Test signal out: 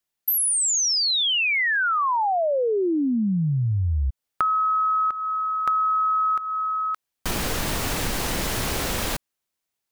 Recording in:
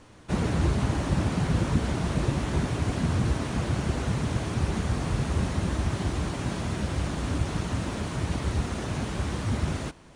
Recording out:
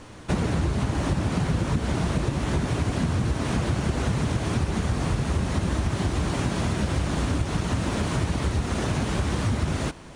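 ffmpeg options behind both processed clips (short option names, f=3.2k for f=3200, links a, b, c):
-af "acompressor=threshold=-29dB:ratio=6,volume=8dB"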